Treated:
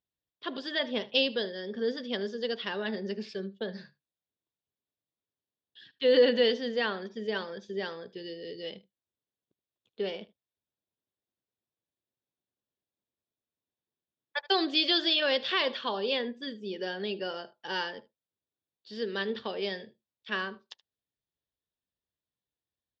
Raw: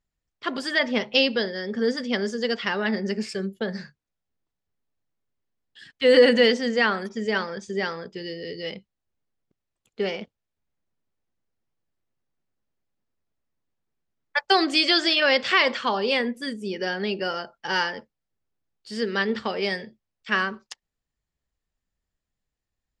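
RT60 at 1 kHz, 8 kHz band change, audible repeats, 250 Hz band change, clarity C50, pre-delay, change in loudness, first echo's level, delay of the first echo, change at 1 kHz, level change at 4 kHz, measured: no reverb audible, below −15 dB, 1, −8.0 dB, no reverb audible, no reverb audible, −7.0 dB, −21.0 dB, 76 ms, −9.5 dB, −5.0 dB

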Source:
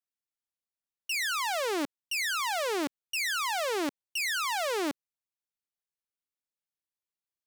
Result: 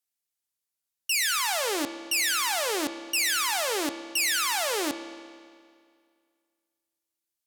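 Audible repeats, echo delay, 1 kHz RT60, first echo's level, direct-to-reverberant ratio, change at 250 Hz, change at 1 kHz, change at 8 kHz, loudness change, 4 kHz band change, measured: no echo audible, no echo audible, 2.1 s, no echo audible, 8.5 dB, +1.5 dB, +1.5 dB, +9.0 dB, +4.5 dB, +6.0 dB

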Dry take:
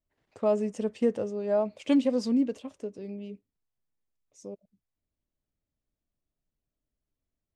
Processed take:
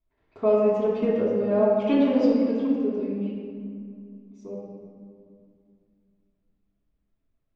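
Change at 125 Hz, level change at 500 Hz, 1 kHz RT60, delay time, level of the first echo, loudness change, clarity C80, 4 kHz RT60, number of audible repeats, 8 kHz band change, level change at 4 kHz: can't be measured, +6.5 dB, 2.3 s, no echo audible, no echo audible, +5.0 dB, 1.0 dB, 1.3 s, no echo audible, can't be measured, +0.5 dB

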